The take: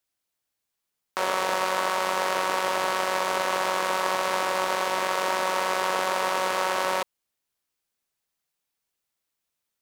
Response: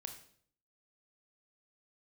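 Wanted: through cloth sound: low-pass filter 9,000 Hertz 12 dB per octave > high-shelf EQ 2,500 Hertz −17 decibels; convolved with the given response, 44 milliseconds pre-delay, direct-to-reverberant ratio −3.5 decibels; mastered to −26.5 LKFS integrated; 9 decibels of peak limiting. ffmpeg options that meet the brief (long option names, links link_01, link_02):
-filter_complex "[0:a]alimiter=limit=-18dB:level=0:latency=1,asplit=2[link_01][link_02];[1:a]atrim=start_sample=2205,adelay=44[link_03];[link_02][link_03]afir=irnorm=-1:irlink=0,volume=7dB[link_04];[link_01][link_04]amix=inputs=2:normalize=0,lowpass=9000,highshelf=frequency=2500:gain=-17,volume=2dB"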